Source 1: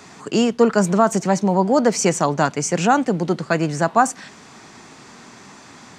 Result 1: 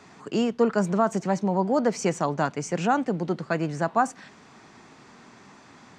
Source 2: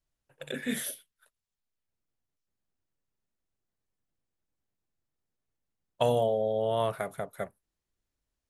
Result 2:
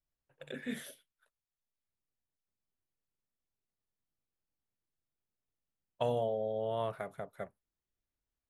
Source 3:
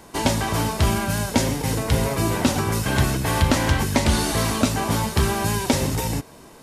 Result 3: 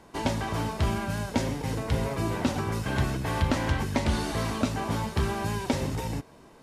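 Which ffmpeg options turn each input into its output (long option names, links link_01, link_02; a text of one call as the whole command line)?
ffmpeg -i in.wav -af "lowpass=frequency=3400:poles=1,volume=-6.5dB" out.wav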